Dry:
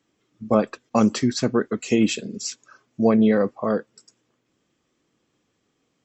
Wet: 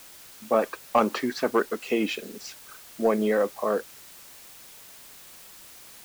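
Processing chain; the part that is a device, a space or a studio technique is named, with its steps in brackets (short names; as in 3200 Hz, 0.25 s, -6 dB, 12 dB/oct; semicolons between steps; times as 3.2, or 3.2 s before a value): 0.61–1.62 dynamic EQ 1000 Hz, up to +6 dB, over -34 dBFS, Q 0.76; tape answering machine (BPF 390–3100 Hz; soft clip -9.5 dBFS, distortion -19 dB; wow and flutter; white noise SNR 19 dB)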